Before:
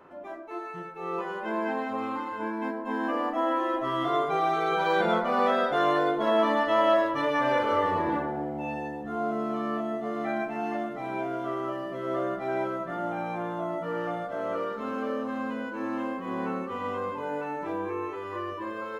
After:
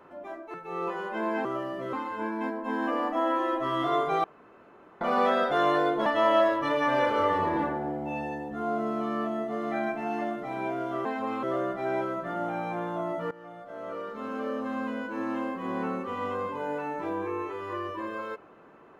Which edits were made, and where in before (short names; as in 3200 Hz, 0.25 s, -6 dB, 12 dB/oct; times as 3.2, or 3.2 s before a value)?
0.54–0.85 cut
1.76–2.14 swap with 11.58–12.06
4.45–5.22 room tone
6.27–6.59 cut
13.94–15.36 fade in, from -19.5 dB